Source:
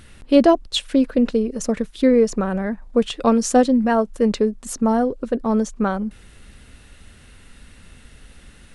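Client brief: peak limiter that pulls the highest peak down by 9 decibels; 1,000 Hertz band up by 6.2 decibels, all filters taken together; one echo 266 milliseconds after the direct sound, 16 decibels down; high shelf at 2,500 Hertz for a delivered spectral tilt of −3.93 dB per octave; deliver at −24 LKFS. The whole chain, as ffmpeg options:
ffmpeg -i in.wav -af "equalizer=frequency=1000:width_type=o:gain=7.5,highshelf=frequency=2500:gain=7.5,alimiter=limit=-9.5dB:level=0:latency=1,aecho=1:1:266:0.158,volume=-4dB" out.wav

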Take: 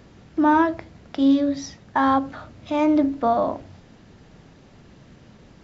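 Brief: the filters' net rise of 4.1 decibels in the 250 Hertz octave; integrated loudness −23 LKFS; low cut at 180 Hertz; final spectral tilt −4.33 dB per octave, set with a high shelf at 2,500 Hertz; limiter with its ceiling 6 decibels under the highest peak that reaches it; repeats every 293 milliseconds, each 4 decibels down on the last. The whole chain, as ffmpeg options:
ffmpeg -i in.wav -af "highpass=180,equalizer=frequency=250:width_type=o:gain=5.5,highshelf=frequency=2500:gain=8.5,alimiter=limit=-11.5dB:level=0:latency=1,aecho=1:1:293|586|879|1172|1465|1758|2051|2344|2637:0.631|0.398|0.25|0.158|0.0994|0.0626|0.0394|0.0249|0.0157,volume=-3dB" out.wav

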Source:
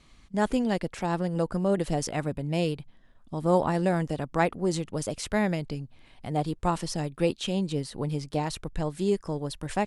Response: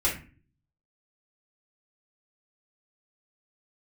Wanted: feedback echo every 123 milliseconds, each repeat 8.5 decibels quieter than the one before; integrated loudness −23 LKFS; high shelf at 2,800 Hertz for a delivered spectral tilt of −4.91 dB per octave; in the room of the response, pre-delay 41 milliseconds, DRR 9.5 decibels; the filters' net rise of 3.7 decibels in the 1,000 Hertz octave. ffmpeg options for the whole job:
-filter_complex "[0:a]equalizer=frequency=1000:width_type=o:gain=4,highshelf=frequency=2800:gain=7.5,aecho=1:1:123|246|369|492:0.376|0.143|0.0543|0.0206,asplit=2[link_01][link_02];[1:a]atrim=start_sample=2205,adelay=41[link_03];[link_02][link_03]afir=irnorm=-1:irlink=0,volume=-19.5dB[link_04];[link_01][link_04]amix=inputs=2:normalize=0,volume=3.5dB"

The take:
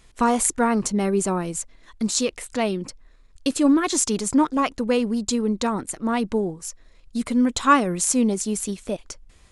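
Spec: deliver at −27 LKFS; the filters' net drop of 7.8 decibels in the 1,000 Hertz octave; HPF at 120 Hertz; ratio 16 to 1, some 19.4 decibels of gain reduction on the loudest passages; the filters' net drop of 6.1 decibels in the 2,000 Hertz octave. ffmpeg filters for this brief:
ffmpeg -i in.wav -af "highpass=120,equalizer=frequency=1000:width_type=o:gain=-8.5,equalizer=frequency=2000:width_type=o:gain=-5,acompressor=threshold=-34dB:ratio=16,volume=11.5dB" out.wav

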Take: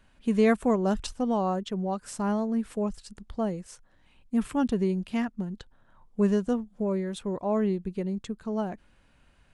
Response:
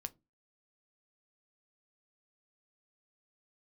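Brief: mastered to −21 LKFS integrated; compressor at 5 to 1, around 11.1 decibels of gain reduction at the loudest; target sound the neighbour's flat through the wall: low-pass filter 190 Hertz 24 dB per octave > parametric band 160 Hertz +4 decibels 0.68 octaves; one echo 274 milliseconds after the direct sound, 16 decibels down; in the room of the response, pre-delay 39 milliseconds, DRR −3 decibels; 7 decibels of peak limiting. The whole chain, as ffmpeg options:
-filter_complex "[0:a]acompressor=threshold=-30dB:ratio=5,alimiter=level_in=4dB:limit=-24dB:level=0:latency=1,volume=-4dB,aecho=1:1:274:0.158,asplit=2[link_01][link_02];[1:a]atrim=start_sample=2205,adelay=39[link_03];[link_02][link_03]afir=irnorm=-1:irlink=0,volume=6dB[link_04];[link_01][link_04]amix=inputs=2:normalize=0,lowpass=frequency=190:width=0.5412,lowpass=frequency=190:width=1.3066,equalizer=frequency=160:width_type=o:width=0.68:gain=4,volume=15dB"

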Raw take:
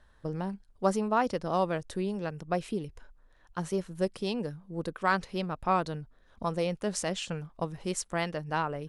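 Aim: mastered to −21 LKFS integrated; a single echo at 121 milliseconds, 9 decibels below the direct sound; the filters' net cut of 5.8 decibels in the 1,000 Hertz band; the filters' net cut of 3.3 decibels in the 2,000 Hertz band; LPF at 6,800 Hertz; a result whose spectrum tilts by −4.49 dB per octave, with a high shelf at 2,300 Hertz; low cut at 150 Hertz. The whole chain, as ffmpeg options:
ffmpeg -i in.wav -af "highpass=150,lowpass=6800,equalizer=frequency=1000:width_type=o:gain=-8,equalizer=frequency=2000:width_type=o:gain=-4,highshelf=frequency=2300:gain=6,aecho=1:1:121:0.355,volume=13dB" out.wav

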